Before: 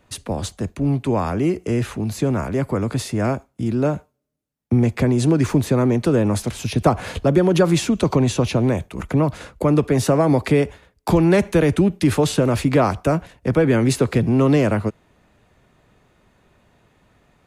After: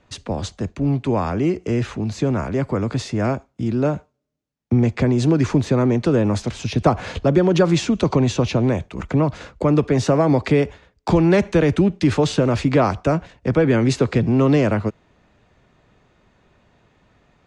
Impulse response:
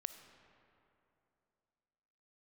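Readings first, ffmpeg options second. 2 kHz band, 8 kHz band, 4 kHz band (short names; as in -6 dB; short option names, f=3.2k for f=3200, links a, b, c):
0.0 dB, -4.0 dB, 0.0 dB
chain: -af "lowpass=f=6.9k:w=0.5412,lowpass=f=6.9k:w=1.3066"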